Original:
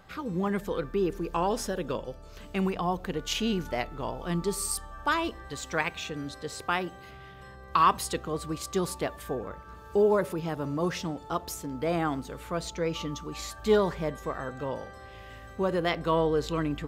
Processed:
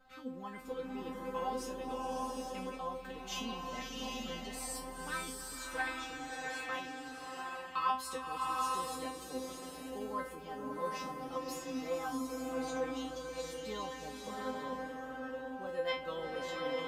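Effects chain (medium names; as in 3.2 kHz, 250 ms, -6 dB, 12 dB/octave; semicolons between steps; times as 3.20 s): feedback comb 260 Hz, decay 0.3 s, harmonics all, mix 100%; swelling reverb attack 800 ms, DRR -0.5 dB; trim +3 dB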